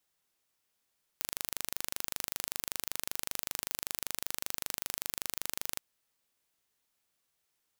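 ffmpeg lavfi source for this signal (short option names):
-f lavfi -i "aevalsrc='0.473*eq(mod(n,1750),0)':d=4.58:s=44100"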